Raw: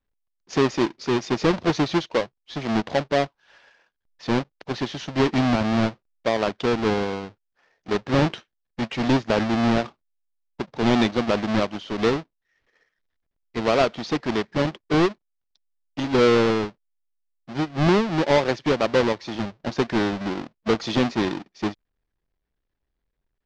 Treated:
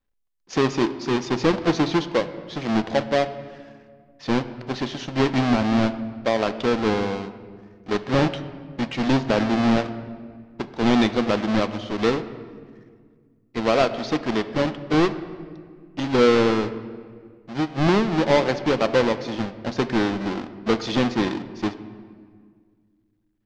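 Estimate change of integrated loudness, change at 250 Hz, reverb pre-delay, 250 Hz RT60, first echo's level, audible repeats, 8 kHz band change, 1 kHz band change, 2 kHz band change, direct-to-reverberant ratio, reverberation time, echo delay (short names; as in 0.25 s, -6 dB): +0.5 dB, +1.0 dB, 4 ms, 2.5 s, none, none, n/a, +0.5 dB, +0.5 dB, 10.5 dB, 1.8 s, none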